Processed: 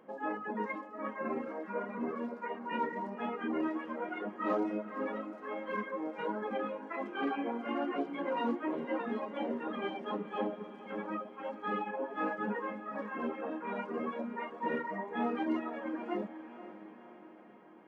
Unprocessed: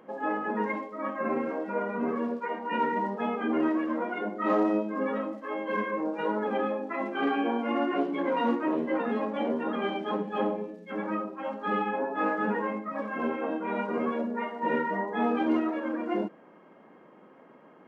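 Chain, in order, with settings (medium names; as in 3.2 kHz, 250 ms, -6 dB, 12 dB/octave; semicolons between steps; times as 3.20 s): reverb removal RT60 0.95 s; echo that smears into a reverb 515 ms, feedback 58%, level -13 dB; trim -5.5 dB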